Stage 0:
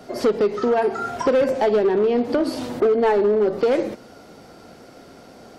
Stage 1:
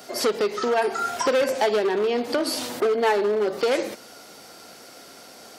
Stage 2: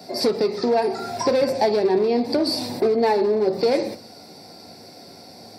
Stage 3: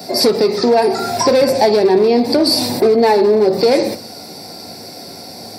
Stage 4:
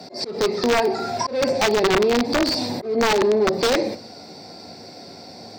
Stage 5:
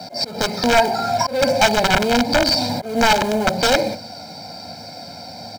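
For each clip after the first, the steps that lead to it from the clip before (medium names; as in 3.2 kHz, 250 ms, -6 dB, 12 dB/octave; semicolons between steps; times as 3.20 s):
tilt EQ +3.5 dB/octave
reverberation RT60 0.40 s, pre-delay 3 ms, DRR 9.5 dB; trim -7 dB
in parallel at 0 dB: peak limiter -17.5 dBFS, peak gain reduction 8.5 dB; on the sum: treble shelf 7.5 kHz +8.5 dB; trim +3.5 dB
slow attack 191 ms; integer overflow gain 5.5 dB; boxcar filter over 4 samples; trim -6 dB
in parallel at -9 dB: companded quantiser 4-bit; on the sum: comb 1.3 ms, depth 81%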